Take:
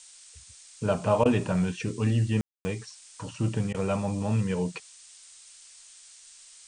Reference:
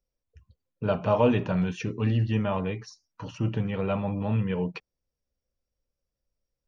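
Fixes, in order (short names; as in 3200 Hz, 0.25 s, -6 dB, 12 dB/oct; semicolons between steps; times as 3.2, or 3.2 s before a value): room tone fill 2.41–2.65; interpolate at 1.24/3.73, 13 ms; noise print and reduce 30 dB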